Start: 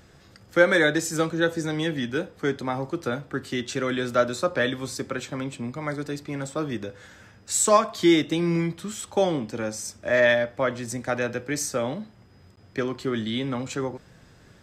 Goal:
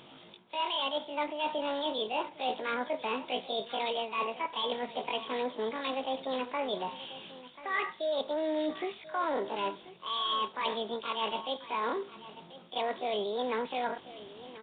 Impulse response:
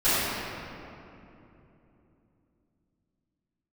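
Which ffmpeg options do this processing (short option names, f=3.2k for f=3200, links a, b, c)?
-filter_complex "[0:a]highpass=f=200:p=1,equalizer=f=1.9k:t=o:w=0.2:g=10,areverse,acompressor=threshold=-30dB:ratio=12,areverse,asetrate=80880,aresample=44100,atempo=0.545254,asplit=2[a][b];[b]asoftclip=type=tanh:threshold=-40dB,volume=-9.5dB[c];[a][c]amix=inputs=2:normalize=0,aecho=1:1:1038:0.158,volume=1dB" -ar 8000 -c:a nellymoser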